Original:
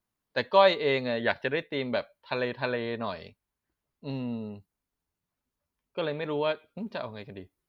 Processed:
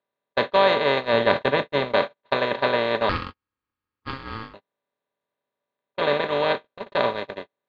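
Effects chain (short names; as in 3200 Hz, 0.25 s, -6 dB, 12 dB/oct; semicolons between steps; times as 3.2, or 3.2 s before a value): per-bin compression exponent 0.2; gate -18 dBFS, range -55 dB; 1.13–1.93 low shelf 240 Hz +7 dB; 3.09–4.54 ring modulator 670 Hz; gain -1.5 dB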